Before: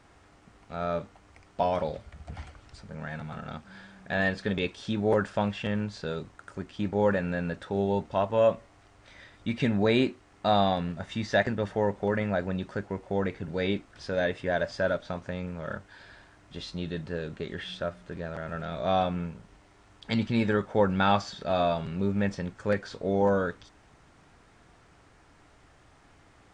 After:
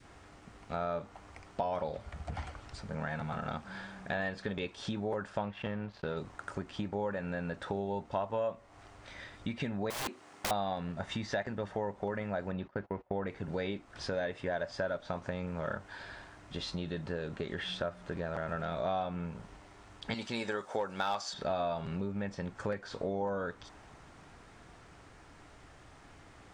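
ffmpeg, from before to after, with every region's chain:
-filter_complex "[0:a]asettb=1/sr,asplit=3[s0][s1][s2];[s0]atrim=end=5.414[s3];[s1]atrim=start=5.41:end=6.17,asetpts=PTS-STARTPTS,afade=t=in:d=0.004:c=qsin,afade=t=out:st=0.756:d=0.004:c=qsin,aeval=exprs='sgn(val(0))*max(abs(val(0))-0.00447,0)':c=same,lowpass=3400[s4];[s2]atrim=start=6.166[s5];[s3][s4]acrossfade=d=0.004:c1=hsin:c2=qsin[s6];[s6][s5]acrossfade=d=0.004:c1=qsin:c2=hsin,asettb=1/sr,asplit=3[s7][s8][s9];[s7]atrim=end=9.904[s10];[s8]atrim=start=9.9:end=10.51,asetpts=PTS-STARTPTS,afade=t=in:d=0.004:c=qsin,afade=t=out:st=0.606:d=0.004:c=qsin,highpass=190,highshelf=f=4900:g=5.5,aeval=exprs='(mod(17.8*val(0)+1,2)-1)/17.8':c=same[s11];[s9]atrim=start=10.506[s12];[s10][s11]acrossfade=d=0.004:c1=hsin:c2=qsin[s13];[s13][s12]acrossfade=d=0.004:c1=qsin:c2=hsin,asettb=1/sr,asplit=3[s14][s15][s16];[s14]atrim=end=12.524[s17];[s15]atrim=start=12.52:end=13.27,asetpts=PTS-STARTPTS,afade=t=in:d=0.004:c=qsin,afade=t=out:st=0.746:d=0.004:c=qsin,lowpass=3200,agate=range=0.0631:threshold=0.00631:ratio=16:release=100:detection=peak[s18];[s16]atrim=start=13.266[s19];[s17][s18]acrossfade=d=0.004:c1=hsin:c2=qsin[s20];[s20][s19]acrossfade=d=0.004:c1=qsin:c2=hsin,asettb=1/sr,asplit=3[s21][s22][s23];[s21]atrim=end=20.144[s24];[s22]atrim=start=20.14:end=21.34,asetpts=PTS-STARTPTS,afade=t=in:d=0.004:c=qsin,afade=t=out:st=1.196:d=0.004:c=qsin,bass=f=250:g=-13,treble=f=4000:g=12,asoftclip=type=hard:threshold=0.168[s25];[s23]atrim=start=21.336[s26];[s24][s25]acrossfade=d=0.004:c1=hsin:c2=qsin[s27];[s27][s26]acrossfade=d=0.004:c1=qsin:c2=hsin,acompressor=threshold=0.0141:ratio=6,adynamicequalizer=threshold=0.00224:dfrequency=890:dqfactor=0.95:tfrequency=890:tqfactor=0.95:attack=5:release=100:ratio=0.375:range=2.5:mode=boostabove:tftype=bell,volume=1.33"

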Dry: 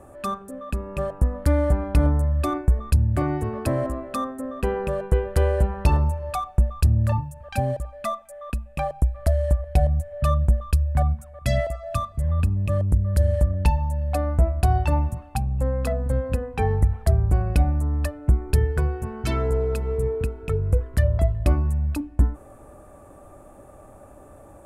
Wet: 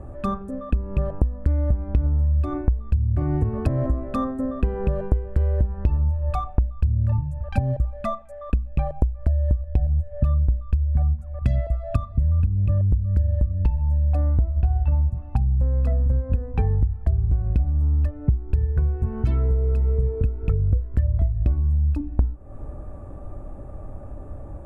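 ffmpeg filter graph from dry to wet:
-filter_complex "[0:a]asettb=1/sr,asplit=3[s0][s1][s2];[s0]atrim=end=14.554[s3];[s1]atrim=start=14.55:end=15.1,asetpts=PTS-STARTPTS,afade=t=in:d=0.004:c=qsin,afade=t=out:st=0.546:d=0.004:c=qsin,lowpass=3600,asplit=2[s4][s5];[s5]adelay=15,volume=0.596[s6];[s4][s6]amix=inputs=2:normalize=0,atrim=end_sample=24255[s7];[s2]atrim=start=15.096[s8];[s3][s7]acrossfade=d=0.004:c1=hsin:c2=qsin[s9];[s9][s8]acrossfade=d=0.004:c1=qsin:c2=hsin,aemphasis=mode=reproduction:type=riaa,acompressor=threshold=0.141:ratio=10"

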